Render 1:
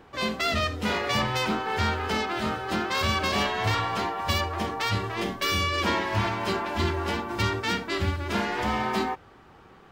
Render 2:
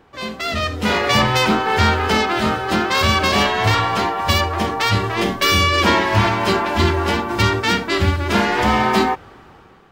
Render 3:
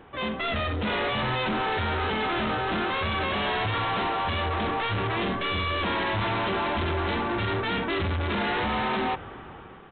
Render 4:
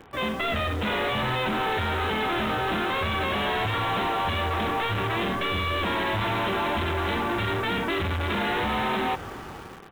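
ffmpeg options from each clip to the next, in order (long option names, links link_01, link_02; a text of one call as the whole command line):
ffmpeg -i in.wav -af "dynaudnorm=framelen=210:gausssize=7:maxgain=13dB" out.wav
ffmpeg -i in.wav -af "alimiter=limit=-11dB:level=0:latency=1:release=25,aresample=8000,asoftclip=type=tanh:threshold=-27dB,aresample=44100,volume=2dB" out.wav
ffmpeg -i in.wav -filter_complex "[0:a]acrossover=split=750|3300[link_01][link_02][link_03];[link_01]acompressor=threshold=-31dB:ratio=4[link_04];[link_02]acompressor=threshold=-31dB:ratio=4[link_05];[link_03]acompressor=threshold=-43dB:ratio=4[link_06];[link_04][link_05][link_06]amix=inputs=3:normalize=0,asplit=2[link_07][link_08];[link_08]acrusher=bits=6:mix=0:aa=0.000001,volume=-6dB[link_09];[link_07][link_09]amix=inputs=2:normalize=0" out.wav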